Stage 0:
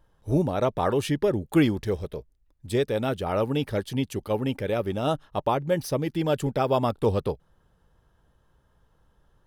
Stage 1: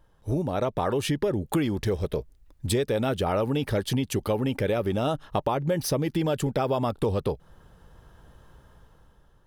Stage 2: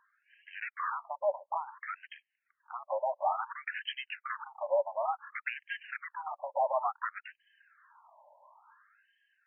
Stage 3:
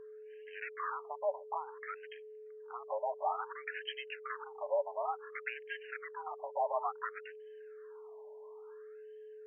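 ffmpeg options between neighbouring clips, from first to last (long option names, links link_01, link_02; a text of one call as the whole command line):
ffmpeg -i in.wav -filter_complex "[0:a]dynaudnorm=framelen=280:gausssize=7:maxgain=12dB,asplit=2[link_01][link_02];[link_02]alimiter=limit=-13.5dB:level=0:latency=1:release=24,volume=2dB[link_03];[link_01][link_03]amix=inputs=2:normalize=0,acompressor=threshold=-18dB:ratio=5,volume=-5dB" out.wav
ffmpeg -i in.wav -af "flanger=delay=1.9:depth=1.7:regen=-21:speed=2:shape=sinusoidal,aeval=exprs='0.168*sin(PI/2*2.82*val(0)/0.168)':channel_layout=same,afftfilt=real='re*between(b*sr/1024,730*pow(2300/730,0.5+0.5*sin(2*PI*0.57*pts/sr))/1.41,730*pow(2300/730,0.5+0.5*sin(2*PI*0.57*pts/sr))*1.41)':imag='im*between(b*sr/1024,730*pow(2300/730,0.5+0.5*sin(2*PI*0.57*pts/sr))/1.41,730*pow(2300/730,0.5+0.5*sin(2*PI*0.57*pts/sr))*1.41)':win_size=1024:overlap=0.75,volume=-5.5dB" out.wav
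ffmpeg -i in.wav -af "aeval=exprs='val(0)+0.00631*sin(2*PI*430*n/s)':channel_layout=same,volume=-4dB" out.wav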